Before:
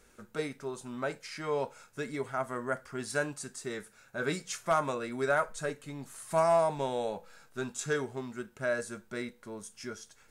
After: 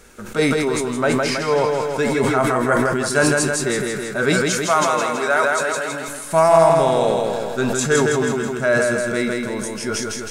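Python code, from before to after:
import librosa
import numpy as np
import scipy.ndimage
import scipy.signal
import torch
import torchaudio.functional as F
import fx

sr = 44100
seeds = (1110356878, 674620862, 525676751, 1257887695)

p1 = fx.highpass(x, sr, hz=760.0, slope=6, at=(4.48, 6.08))
p2 = fx.rider(p1, sr, range_db=3, speed_s=0.5)
p3 = p1 + (p2 * 10.0 ** (0.0 / 20.0))
p4 = fx.echo_feedback(p3, sr, ms=162, feedback_pct=56, wet_db=-4.0)
p5 = fx.sustainer(p4, sr, db_per_s=21.0)
y = p5 * 10.0 ** (6.5 / 20.0)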